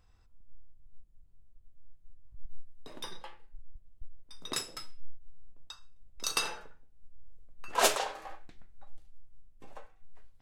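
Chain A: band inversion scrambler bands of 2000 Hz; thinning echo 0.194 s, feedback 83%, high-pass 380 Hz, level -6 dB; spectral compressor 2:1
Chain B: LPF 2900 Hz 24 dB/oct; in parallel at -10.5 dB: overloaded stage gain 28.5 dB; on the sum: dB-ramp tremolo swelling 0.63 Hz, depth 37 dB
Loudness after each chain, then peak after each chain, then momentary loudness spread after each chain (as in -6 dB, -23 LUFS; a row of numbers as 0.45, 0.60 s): -30.5, -36.5 LUFS; -9.0, -15.5 dBFS; 14, 22 LU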